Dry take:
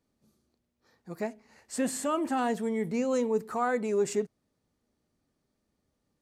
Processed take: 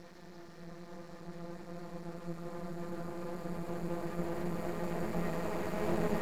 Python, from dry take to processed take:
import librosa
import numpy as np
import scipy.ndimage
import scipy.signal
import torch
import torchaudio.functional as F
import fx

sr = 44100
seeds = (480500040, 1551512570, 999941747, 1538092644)

y = fx.paulstretch(x, sr, seeds[0], factor=36.0, window_s=0.5, from_s=0.92)
y = np.maximum(y, 0.0)
y = y * librosa.db_to_amplitude(11.0)